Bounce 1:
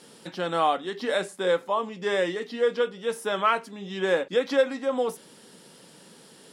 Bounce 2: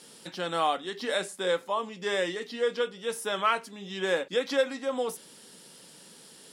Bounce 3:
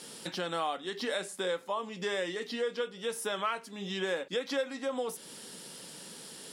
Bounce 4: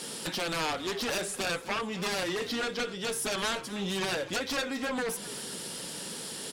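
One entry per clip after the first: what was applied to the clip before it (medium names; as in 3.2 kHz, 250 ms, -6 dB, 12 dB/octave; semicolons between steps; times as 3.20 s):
treble shelf 2.5 kHz +8 dB; trim -4.5 dB
compression 2.5:1, threshold -39 dBFS, peak gain reduction 12.5 dB; trim +4.5 dB
Chebyshev shaper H 3 -12 dB, 7 -8 dB, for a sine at -19 dBFS; frequency-shifting echo 255 ms, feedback 43%, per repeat -52 Hz, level -16 dB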